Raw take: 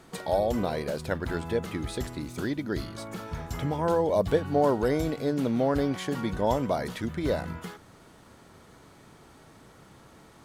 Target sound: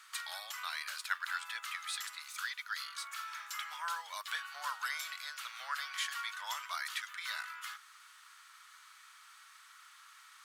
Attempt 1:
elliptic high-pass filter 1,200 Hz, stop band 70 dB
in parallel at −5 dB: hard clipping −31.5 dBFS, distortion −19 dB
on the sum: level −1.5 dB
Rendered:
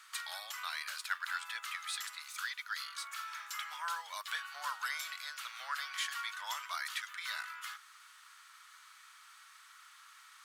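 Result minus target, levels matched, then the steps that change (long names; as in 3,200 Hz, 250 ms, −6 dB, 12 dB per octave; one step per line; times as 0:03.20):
hard clipping: distortion +33 dB
change: hard clipping −21 dBFS, distortion −52 dB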